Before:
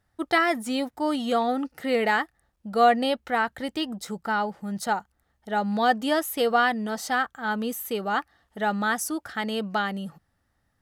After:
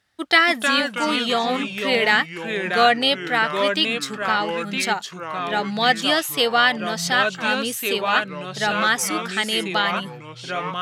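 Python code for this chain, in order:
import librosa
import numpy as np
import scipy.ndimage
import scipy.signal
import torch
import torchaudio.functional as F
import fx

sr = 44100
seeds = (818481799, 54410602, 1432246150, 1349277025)

y = fx.weighting(x, sr, curve='D')
y = fx.echo_pitch(y, sr, ms=249, semitones=-3, count=3, db_per_echo=-6.0)
y = y * librosa.db_to_amplitude(1.5)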